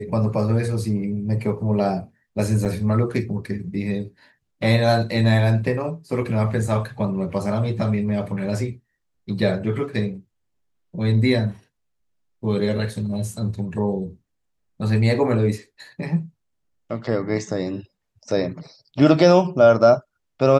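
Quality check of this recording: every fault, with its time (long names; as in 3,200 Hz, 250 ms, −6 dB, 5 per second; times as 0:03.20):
0:02.65–0:02.66: drop-out 7.2 ms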